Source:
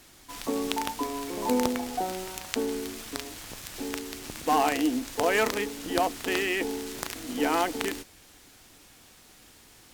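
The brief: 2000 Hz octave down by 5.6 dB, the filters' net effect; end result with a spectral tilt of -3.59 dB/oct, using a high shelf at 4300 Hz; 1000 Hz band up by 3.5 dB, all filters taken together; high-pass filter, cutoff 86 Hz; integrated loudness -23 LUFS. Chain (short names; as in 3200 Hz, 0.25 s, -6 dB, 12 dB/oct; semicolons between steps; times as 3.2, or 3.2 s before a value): HPF 86 Hz; bell 1000 Hz +6.5 dB; bell 2000 Hz -8.5 dB; high shelf 4300 Hz -3 dB; gain +5.5 dB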